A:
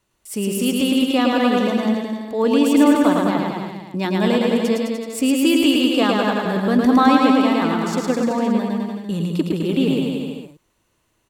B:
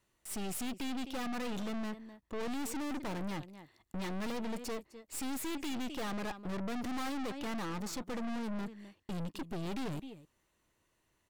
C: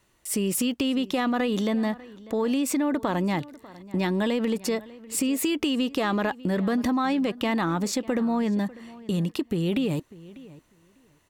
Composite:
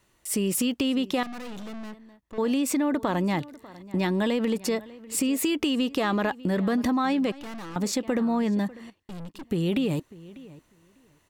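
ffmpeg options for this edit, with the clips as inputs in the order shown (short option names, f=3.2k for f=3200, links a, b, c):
-filter_complex "[1:a]asplit=3[a][b][c];[2:a]asplit=4[d][e][f][g];[d]atrim=end=1.232[h];[a]atrim=start=1.228:end=2.382[i];[e]atrim=start=2.378:end=7.322[j];[b]atrim=start=7.318:end=7.762[k];[f]atrim=start=7.758:end=8.902[l];[c]atrim=start=8.898:end=9.442[m];[g]atrim=start=9.438[n];[h][i]acrossfade=d=0.004:c1=hsin:c2=hsin[o];[o][j]acrossfade=d=0.004:c1=hsin:c2=hsin[p];[p][k]acrossfade=d=0.004:c1=hsin:c2=hsin[q];[q][l]acrossfade=d=0.004:c1=hsin:c2=hsin[r];[r][m]acrossfade=d=0.004:c1=hsin:c2=hsin[s];[s][n]acrossfade=d=0.004:c1=hsin:c2=hsin"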